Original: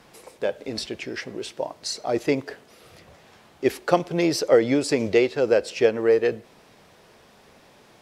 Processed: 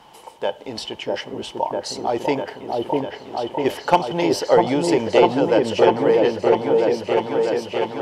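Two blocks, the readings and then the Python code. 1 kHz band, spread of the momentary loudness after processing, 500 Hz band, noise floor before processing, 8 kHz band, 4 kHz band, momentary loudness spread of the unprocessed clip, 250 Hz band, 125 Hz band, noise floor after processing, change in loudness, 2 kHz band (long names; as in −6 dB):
+11.5 dB, 12 LU, +4.5 dB, −54 dBFS, −0.5 dB, +4.5 dB, 13 LU, +4.0 dB, +4.0 dB, −43 dBFS, +3.0 dB, +2.0 dB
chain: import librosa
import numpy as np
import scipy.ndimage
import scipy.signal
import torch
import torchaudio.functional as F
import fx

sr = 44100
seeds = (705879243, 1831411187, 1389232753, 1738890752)

y = fx.small_body(x, sr, hz=(890.0, 3000.0), ring_ms=20, db=16)
y = np.clip(10.0 ** (3.5 / 20.0) * y, -1.0, 1.0) / 10.0 ** (3.5 / 20.0)
y = fx.echo_opening(y, sr, ms=648, hz=750, octaves=1, feedback_pct=70, wet_db=0)
y = F.gain(torch.from_numpy(y), -1.0).numpy()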